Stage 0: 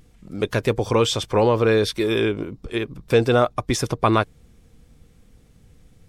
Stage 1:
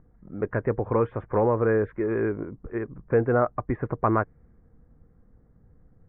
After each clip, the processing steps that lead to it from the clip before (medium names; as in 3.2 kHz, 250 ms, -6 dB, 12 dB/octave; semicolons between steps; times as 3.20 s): steep low-pass 1.9 kHz 48 dB/octave; level-controlled noise filter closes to 1.4 kHz, open at -16.5 dBFS; trim -4.5 dB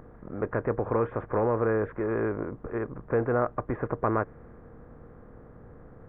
spectral levelling over time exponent 0.6; trim -6 dB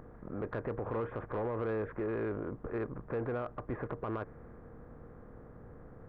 peak limiter -23 dBFS, peak gain reduction 10 dB; saturation -24.5 dBFS, distortion -20 dB; trim -2.5 dB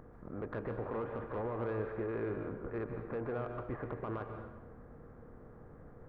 plate-style reverb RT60 1.1 s, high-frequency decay 0.75×, pre-delay 120 ms, DRR 5 dB; trim -3 dB